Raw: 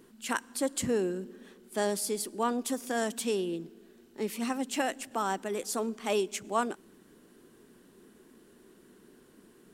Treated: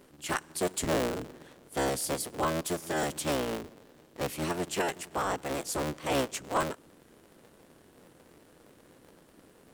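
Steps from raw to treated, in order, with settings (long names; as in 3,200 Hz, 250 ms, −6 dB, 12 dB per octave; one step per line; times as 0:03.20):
sub-harmonics by changed cycles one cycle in 3, inverted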